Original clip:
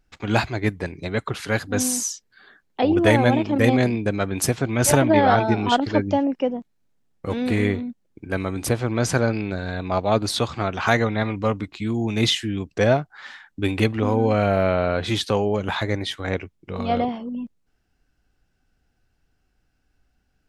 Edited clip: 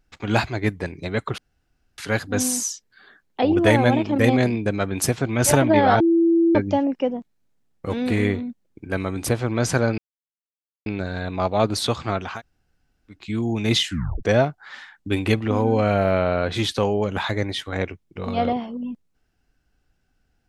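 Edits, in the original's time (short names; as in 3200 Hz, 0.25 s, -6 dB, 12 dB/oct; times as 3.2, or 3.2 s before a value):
1.38 insert room tone 0.60 s
5.4–5.95 bleep 334 Hz -13.5 dBFS
9.38 insert silence 0.88 s
10.82–11.71 room tone, crossfade 0.24 s
12.4 tape stop 0.35 s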